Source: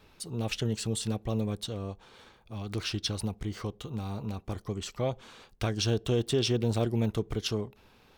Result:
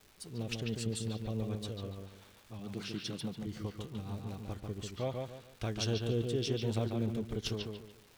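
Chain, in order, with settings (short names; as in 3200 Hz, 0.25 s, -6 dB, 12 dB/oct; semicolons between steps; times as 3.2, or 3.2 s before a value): rotary speaker horn 7 Hz, later 1.2 Hz, at 3.94; crackle 580/s -44 dBFS; 2.59–3.47 resonant low shelf 110 Hz -11 dB, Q 3; on a send: analogue delay 0.144 s, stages 4096, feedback 31%, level -4 dB; on the sum: gain -5.5 dB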